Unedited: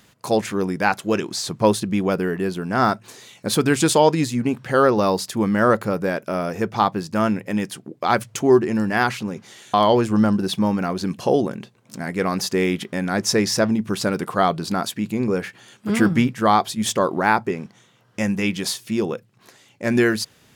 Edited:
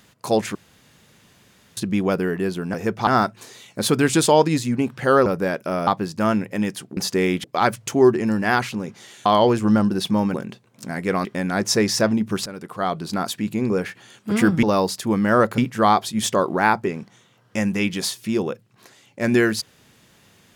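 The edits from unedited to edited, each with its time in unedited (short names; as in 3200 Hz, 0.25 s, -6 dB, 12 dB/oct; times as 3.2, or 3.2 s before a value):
0.55–1.77 room tone
4.93–5.88 move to 16.21
6.49–6.82 move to 2.74
10.82–11.45 cut
12.36–12.83 move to 7.92
14.04–14.92 fade in, from -15.5 dB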